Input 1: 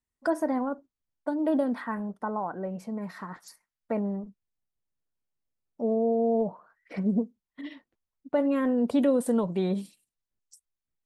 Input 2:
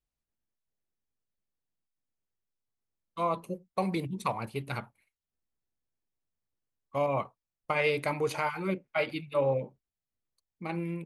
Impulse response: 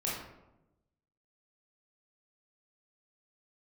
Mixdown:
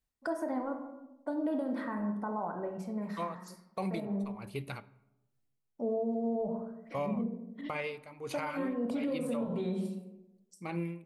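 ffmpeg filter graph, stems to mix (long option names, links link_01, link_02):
-filter_complex "[0:a]volume=-7.5dB,asplit=2[link_01][link_02];[link_02]volume=-5.5dB[link_03];[1:a]aeval=exprs='val(0)*pow(10,-23*(0.5-0.5*cos(2*PI*1.3*n/s))/20)':channel_layout=same,volume=1.5dB,asplit=3[link_04][link_05][link_06];[link_05]volume=-23.5dB[link_07];[link_06]apad=whole_len=487361[link_08];[link_01][link_08]sidechaincompress=threshold=-47dB:ratio=8:attack=16:release=211[link_09];[2:a]atrim=start_sample=2205[link_10];[link_03][link_07]amix=inputs=2:normalize=0[link_11];[link_11][link_10]afir=irnorm=-1:irlink=0[link_12];[link_09][link_04][link_12]amix=inputs=3:normalize=0,alimiter=level_in=1.5dB:limit=-24dB:level=0:latency=1:release=145,volume=-1.5dB"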